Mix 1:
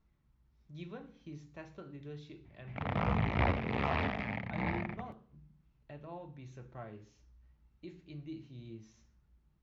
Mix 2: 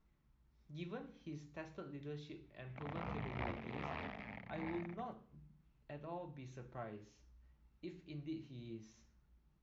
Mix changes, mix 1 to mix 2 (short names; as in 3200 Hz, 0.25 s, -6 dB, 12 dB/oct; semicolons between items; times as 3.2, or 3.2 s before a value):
background -11.5 dB; master: add bell 88 Hz -5.5 dB 1.2 oct